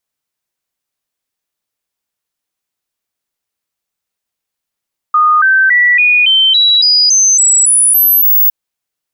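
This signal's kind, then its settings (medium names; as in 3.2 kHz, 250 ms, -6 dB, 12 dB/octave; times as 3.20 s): stepped sine 1.23 kHz up, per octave 3, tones 12, 0.28 s, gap 0.00 s -5.5 dBFS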